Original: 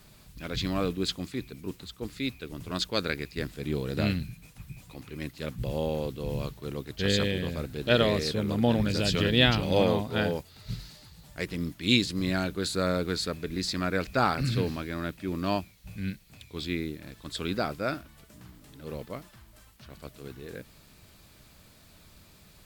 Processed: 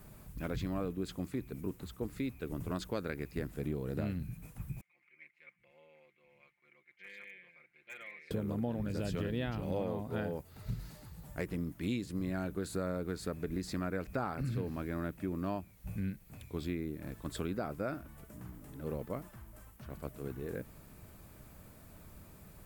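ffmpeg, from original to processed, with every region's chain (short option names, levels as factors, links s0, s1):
-filter_complex "[0:a]asettb=1/sr,asplit=3[s0][s1][s2];[s0]atrim=end=4.814[s3];[s1]atrim=start=4.81:end=8.31,asetpts=PTS-STARTPTS,afade=t=in:d=0.004:c=qsin,afade=t=out:st=3.496:d=0.004:c=qsin,bandpass=f=2200:t=q:w=18,asoftclip=type=hard:threshold=0.0141,aecho=1:1:5.7:0.93,atrim=end_sample=154350[s4];[s2]atrim=start=8.306[s5];[s3][s4]acrossfade=d=0.004:c1=hsin:c2=qsin[s6];[s6][s5]acrossfade=d=0.004:c1=qsin:c2=hsin,equalizer=f=4100:w=0.74:g=-15,acompressor=threshold=0.0158:ratio=5,volume=1.33"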